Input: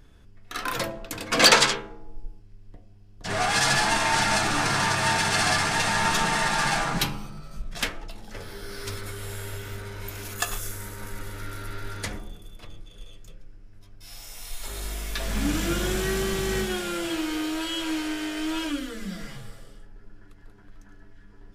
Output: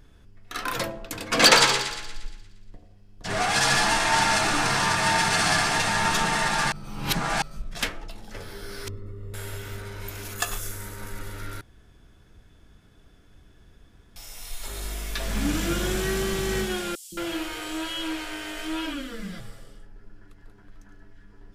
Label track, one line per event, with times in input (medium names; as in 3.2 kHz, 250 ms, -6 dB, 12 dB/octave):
1.250000	5.780000	two-band feedback delay split 1.4 kHz, lows 84 ms, highs 117 ms, level -7.5 dB
6.720000	7.420000	reverse
8.880000	9.340000	boxcar filter over 56 samples
11.610000	14.160000	room tone
16.950000	19.400000	three bands offset in time highs, lows, mids 170/220 ms, splits 280/5400 Hz